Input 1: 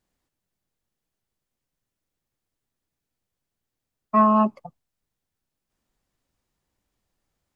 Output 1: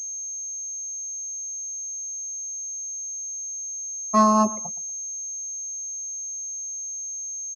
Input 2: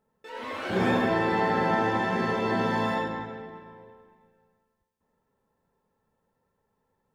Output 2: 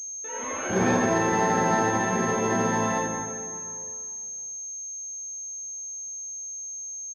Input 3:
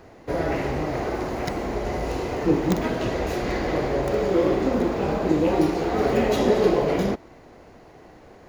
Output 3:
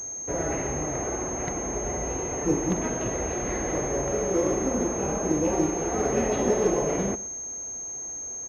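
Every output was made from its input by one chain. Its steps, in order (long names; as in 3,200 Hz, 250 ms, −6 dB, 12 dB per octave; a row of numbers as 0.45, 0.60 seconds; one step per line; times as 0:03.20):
repeating echo 119 ms, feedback 21%, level −18 dB
switching amplifier with a slow clock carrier 6,400 Hz
loudness normalisation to −27 LKFS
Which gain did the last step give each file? 0.0, +2.0, −4.0 decibels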